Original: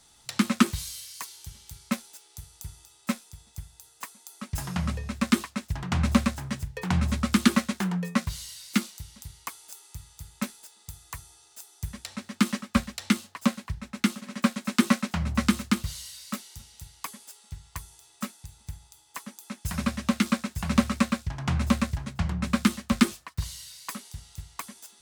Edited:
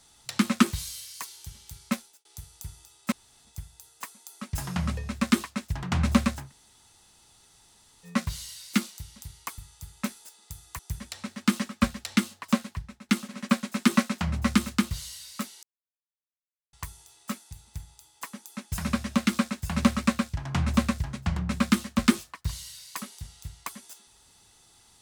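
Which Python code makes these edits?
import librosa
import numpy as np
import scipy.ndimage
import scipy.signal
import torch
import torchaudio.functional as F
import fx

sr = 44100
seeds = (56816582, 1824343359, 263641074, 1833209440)

y = fx.edit(x, sr, fx.fade_out_span(start_s=1.93, length_s=0.32),
    fx.room_tone_fill(start_s=3.12, length_s=0.33),
    fx.room_tone_fill(start_s=6.44, length_s=1.67, crossfade_s=0.16),
    fx.cut(start_s=9.58, length_s=0.38),
    fx.cut(start_s=11.17, length_s=0.55),
    fx.fade_out_to(start_s=13.6, length_s=0.42, floor_db=-14.5),
    fx.silence(start_s=16.56, length_s=1.1), tone=tone)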